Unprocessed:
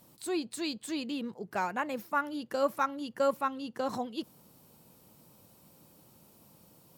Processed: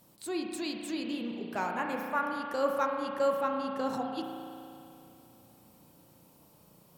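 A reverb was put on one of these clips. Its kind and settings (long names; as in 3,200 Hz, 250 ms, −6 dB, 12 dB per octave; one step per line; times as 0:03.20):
spring reverb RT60 2.7 s, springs 34 ms, chirp 80 ms, DRR 1.5 dB
level −2 dB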